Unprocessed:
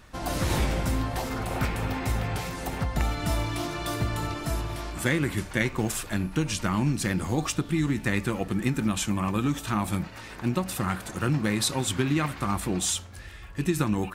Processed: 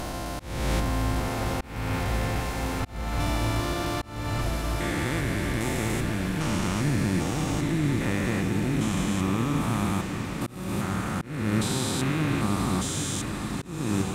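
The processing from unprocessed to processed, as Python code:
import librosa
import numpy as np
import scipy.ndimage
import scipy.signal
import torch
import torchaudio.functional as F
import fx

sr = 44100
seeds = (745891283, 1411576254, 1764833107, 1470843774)

y = fx.spec_steps(x, sr, hold_ms=400)
y = fx.echo_diffused(y, sr, ms=902, feedback_pct=76, wet_db=-8.5)
y = fx.auto_swell(y, sr, attack_ms=340.0)
y = y * 10.0 ** (3.0 / 20.0)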